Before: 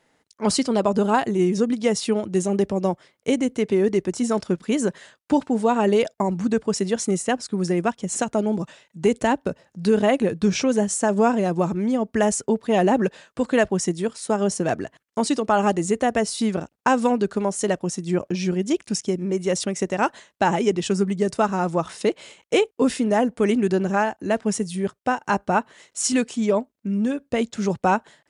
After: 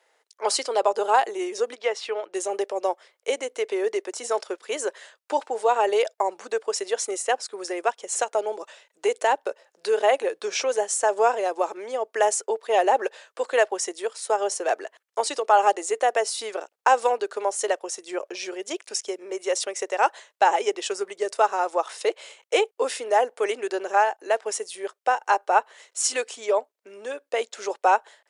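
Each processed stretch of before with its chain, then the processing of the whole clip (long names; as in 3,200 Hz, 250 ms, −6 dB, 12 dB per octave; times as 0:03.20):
0:01.75–0:02.34: low-pass filter 2,500 Hz + spectral tilt +2.5 dB per octave
whole clip: Butterworth high-pass 420 Hz 36 dB per octave; dynamic equaliser 810 Hz, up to +5 dB, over −38 dBFS, Q 7.6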